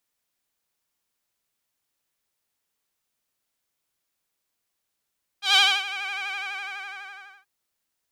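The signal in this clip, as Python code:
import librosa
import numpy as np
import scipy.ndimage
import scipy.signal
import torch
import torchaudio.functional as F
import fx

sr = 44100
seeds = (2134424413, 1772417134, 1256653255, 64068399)

y = fx.sub_patch_vibrato(sr, seeds[0], note=79, wave='saw', wave2='triangle', interval_st=7, detune_cents=16, level2_db=-9.0, sub_db=-18.0, noise_db=-22.5, kind='bandpass', cutoff_hz=1800.0, q=2.8, env_oct=1.0, env_decay_s=0.63, env_sustain_pct=40, attack_ms=139.0, decay_s=0.27, sustain_db=-16.5, release_s=1.16, note_s=0.87, lfo_hz=12.0, vibrato_cents=68)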